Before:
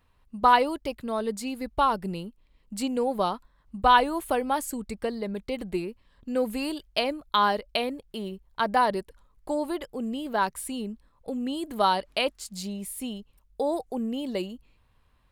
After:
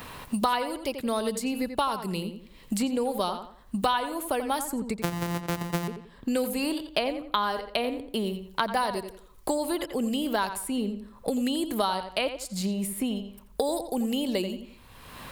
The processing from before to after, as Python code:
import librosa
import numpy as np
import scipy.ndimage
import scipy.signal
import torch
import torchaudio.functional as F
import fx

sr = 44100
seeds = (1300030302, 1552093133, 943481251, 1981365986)

y = fx.sample_sort(x, sr, block=256, at=(4.98, 5.88))
y = fx.high_shelf(y, sr, hz=7400.0, db=7.0)
y = fx.echo_filtered(y, sr, ms=86, feedback_pct=25, hz=4000.0, wet_db=-10)
y = fx.band_squash(y, sr, depth_pct=100)
y = y * 10.0 ** (-1.5 / 20.0)